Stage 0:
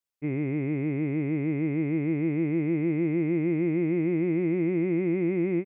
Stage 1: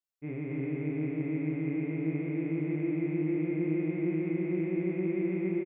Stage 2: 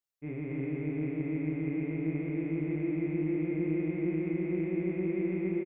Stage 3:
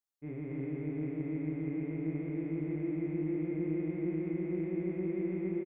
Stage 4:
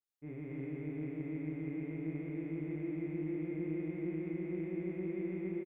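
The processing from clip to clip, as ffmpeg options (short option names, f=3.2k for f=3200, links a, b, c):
-af "aecho=1:1:32.07|265.3:0.708|0.891,volume=-8.5dB"
-af "tremolo=f=130:d=0.182"
-af "equalizer=f=2.5k:t=o:w=0.53:g=-7,volume=-3dB"
-af "adynamicequalizer=threshold=0.002:dfrequency=1800:dqfactor=0.7:tfrequency=1800:tqfactor=0.7:attack=5:release=100:ratio=0.375:range=2.5:mode=boostabove:tftype=highshelf,volume=-4dB"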